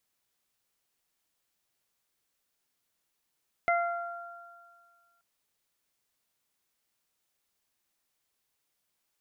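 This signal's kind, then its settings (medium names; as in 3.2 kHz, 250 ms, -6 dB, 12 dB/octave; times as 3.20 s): additive tone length 1.53 s, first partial 690 Hz, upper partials -4.5/-3 dB, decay 1.66 s, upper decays 2.18/0.55 s, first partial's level -23.5 dB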